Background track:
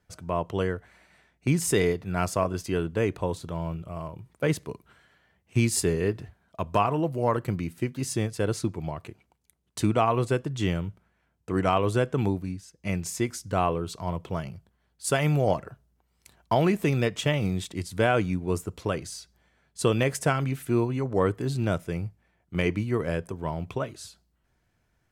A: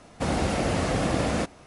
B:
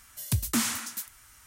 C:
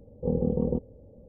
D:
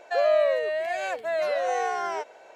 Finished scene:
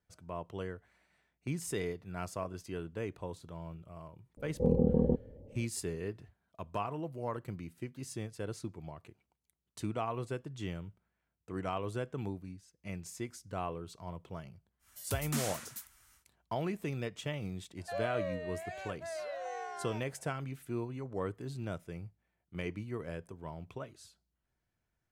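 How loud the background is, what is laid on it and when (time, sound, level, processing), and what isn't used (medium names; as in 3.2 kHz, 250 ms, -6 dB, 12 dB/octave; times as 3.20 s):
background track -13 dB
4.37 s: add C -1 dB
14.79 s: add B -9.5 dB, fades 0.10 s
17.77 s: add D -14.5 dB
not used: A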